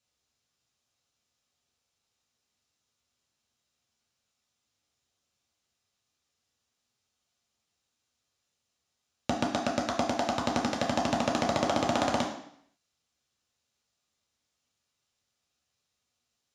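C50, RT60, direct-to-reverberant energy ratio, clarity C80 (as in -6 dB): 6.5 dB, 0.65 s, -1.0 dB, 9.5 dB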